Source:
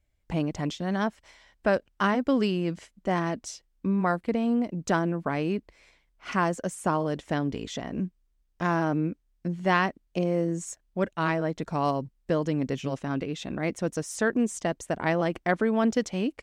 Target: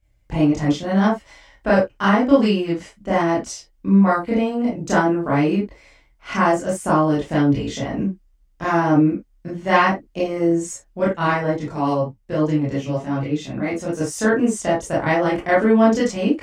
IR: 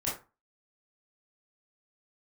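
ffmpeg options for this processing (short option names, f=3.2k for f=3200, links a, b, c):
-filter_complex "[1:a]atrim=start_sample=2205,atrim=end_sample=4410[a];[0:a][a]afir=irnorm=-1:irlink=0,asettb=1/sr,asplit=3[b][c][d];[b]atrim=end=11.574[e];[c]atrim=start=11.57:end=14.01,asetpts=PTS-STARTPTS,afade=t=in:d=0.004:c=qsin,afade=t=out:st=2.436:d=0.004:c=qsin,flanger=delay=5.9:depth=7.1:regen=36:speed=1.1:shape=triangular[f];[d]atrim=start=14.006[g];[e][f]acrossfade=d=0.004:c1=hsin:c2=qsin[h];[h][g]acrossfade=d=0.004:c1=qsin:c2=hsin,volume=3dB"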